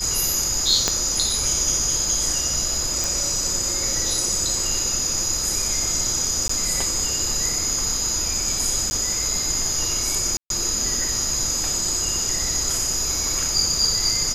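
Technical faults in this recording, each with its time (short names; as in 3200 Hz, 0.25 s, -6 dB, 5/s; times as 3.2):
tone 5000 Hz -28 dBFS
0.88 pop -4 dBFS
3.04 pop
6.48–6.49 gap 14 ms
8.9–8.91 gap 10 ms
10.37–10.5 gap 0.132 s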